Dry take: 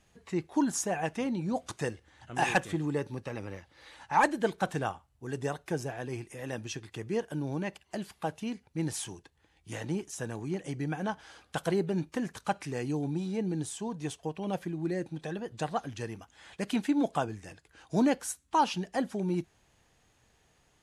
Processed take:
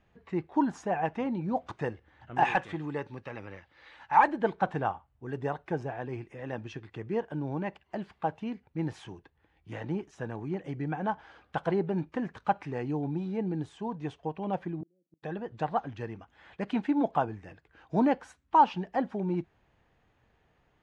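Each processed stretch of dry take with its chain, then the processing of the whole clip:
2.45–4.28 tilt shelf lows -5 dB, about 1100 Hz + de-esser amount 65%
14.81–15.23 elliptic band-pass 170–630 Hz + flipped gate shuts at -31 dBFS, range -40 dB
whole clip: LPF 2300 Hz 12 dB/oct; dynamic EQ 870 Hz, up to +6 dB, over -47 dBFS, Q 2.3

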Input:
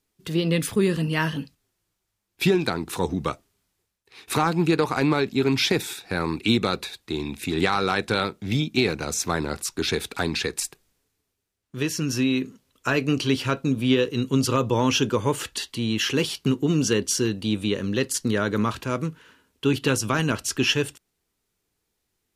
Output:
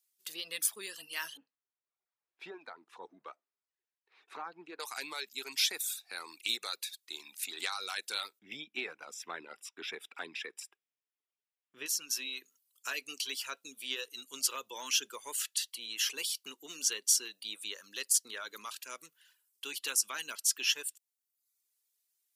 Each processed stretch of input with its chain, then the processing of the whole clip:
1.37–4.8 G.711 law mismatch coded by mu + LPF 1200 Hz
8.39–11.86 polynomial smoothing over 25 samples + low shelf 410 Hz +10.5 dB
whole clip: HPF 320 Hz 12 dB/oct; reverb removal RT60 0.73 s; differentiator

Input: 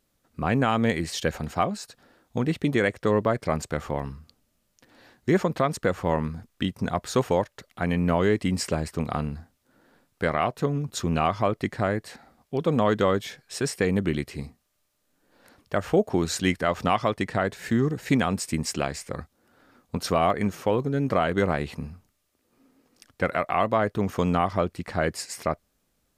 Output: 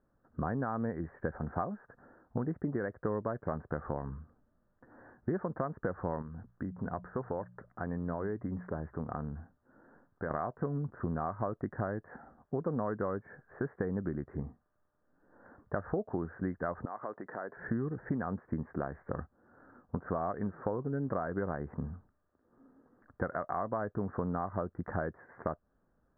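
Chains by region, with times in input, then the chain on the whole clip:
6.22–10.31 notches 60/120/180 Hz + compressor 1.5:1, threshold -46 dBFS
16.85–17.57 compressor 5:1, threshold -34 dBFS + BPF 320–5700 Hz
whole clip: compressor 6:1, threshold -31 dBFS; steep low-pass 1700 Hz 72 dB/oct

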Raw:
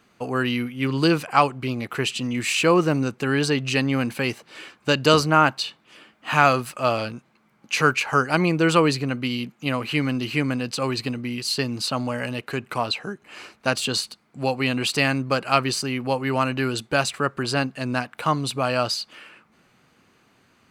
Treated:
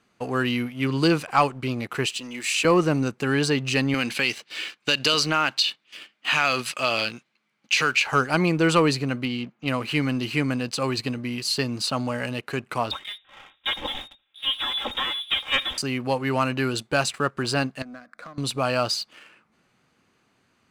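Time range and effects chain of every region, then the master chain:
2.06–2.65 HPF 360 Hz + bell 780 Hz -4.5 dB 2.5 oct
3.94–8.07 gate -51 dBFS, range -8 dB + weighting filter D + compressor 2.5:1, threshold -18 dBFS
9.25–9.68 HPF 83 Hz 6 dB/oct + air absorption 170 m
12.91–15.78 minimum comb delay 3.8 ms + echo 76 ms -21.5 dB + inverted band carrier 3700 Hz
17.82–18.38 LPF 5300 Hz + compressor 8:1, threshold -32 dBFS + fixed phaser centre 590 Hz, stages 8
whole clip: elliptic low-pass 12000 Hz; sample leveller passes 1; gain -3.5 dB

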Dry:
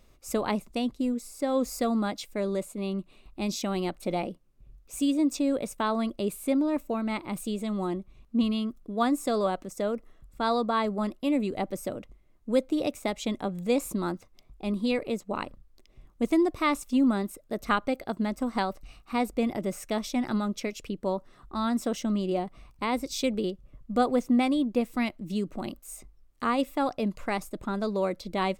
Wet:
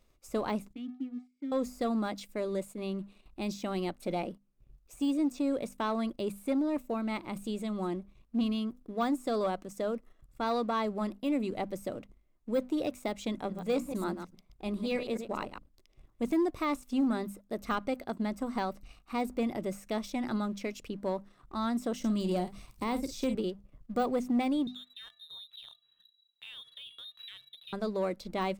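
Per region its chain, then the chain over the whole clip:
0.73–1.52 vowel filter i + high shelf 8000 Hz -11.5 dB + mismatched tape noise reduction decoder only
13.32–16.22 reverse delay 0.103 s, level -8.5 dB + notches 60/120/180/240/300 Hz
21.99–23.35 tone controls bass +5 dB, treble +9 dB + doubler 50 ms -13 dB + three-band squash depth 40%
24.67–27.73 resonator 540 Hz, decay 0.4 s, mix 70% + compressor, threshold -40 dBFS + inverted band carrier 3900 Hz
whole clip: notches 50/100/150/200/250 Hz; de-esser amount 95%; sample leveller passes 1; gain -7 dB

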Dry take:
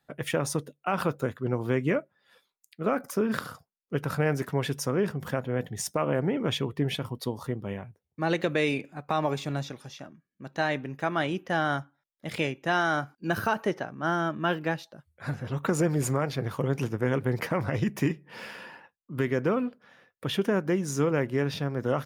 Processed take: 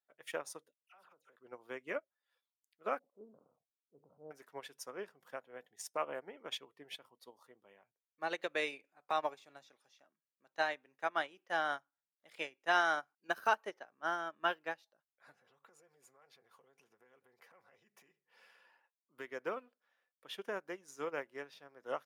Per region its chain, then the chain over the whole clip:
0.74–1.36 dispersion lows, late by 71 ms, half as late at 2400 Hz + compressor 10:1, threshold -37 dBFS
2.99–4.31 low shelf 280 Hz +5 dB + transient shaper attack -6 dB, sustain +7 dB + Gaussian blur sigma 14 samples
15.32–18.65 notch comb 310 Hz + compressor 8:1, threshold -34 dBFS
whole clip: HPF 560 Hz 12 dB/oct; upward expander 2.5:1, over -38 dBFS; gain -1.5 dB

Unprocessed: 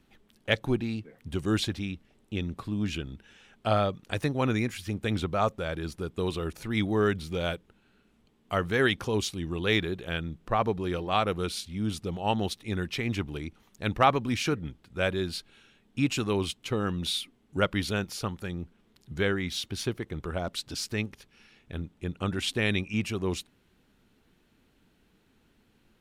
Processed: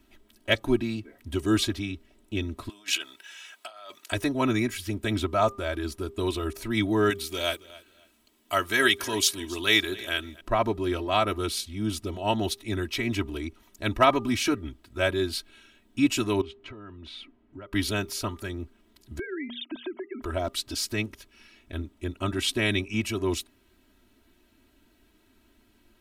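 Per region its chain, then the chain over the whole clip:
2.69–4.12 negative-ratio compressor -33 dBFS, ratio -0.5 + HPF 890 Hz + high shelf 3200 Hz +6 dB
7.1–10.41 tilt +2.5 dB/oct + feedback echo 0.27 s, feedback 23%, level -20 dB
16.41–17.73 LPF 2000 Hz + compressor 12:1, threshold -40 dBFS
19.19–20.22 sine-wave speech + notches 60/120/180/240 Hz + compressor 12:1, threshold -34 dBFS
whole clip: high shelf 11000 Hz +9 dB; comb 3.1 ms, depth 95%; de-hum 400.8 Hz, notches 3

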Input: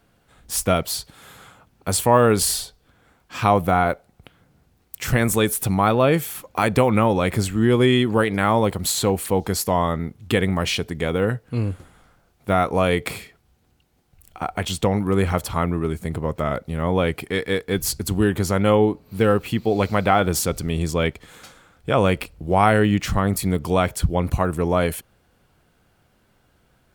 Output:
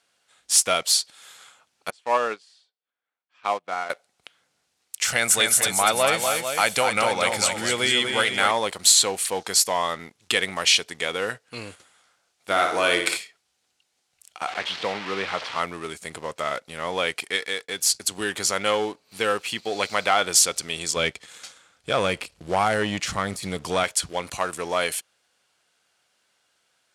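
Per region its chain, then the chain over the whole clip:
1.9–3.9 BPF 190–2900 Hz + upward expander 2.5:1, over -28 dBFS
5.06–8.51 comb 1.4 ms, depth 32% + tapped delay 0.245/0.446 s -6/-9 dB
12.5–13.17 small resonant body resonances 330/1500 Hz, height 14 dB, ringing for 90 ms + flutter echo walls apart 9.8 m, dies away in 0.55 s
14.47–15.6 delta modulation 32 kbps, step -23.5 dBFS + BPF 110–3100 Hz + air absorption 120 m
17.36–18.18 expander -37 dBFS + HPF 53 Hz + compressor 2:1, threshold -24 dBFS
20.96–23.84 de-esser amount 65% + low shelf 270 Hz +11.5 dB
whole clip: bell 560 Hz +3 dB 0.96 oct; sample leveller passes 1; weighting filter ITU-R 468; gain -6.5 dB

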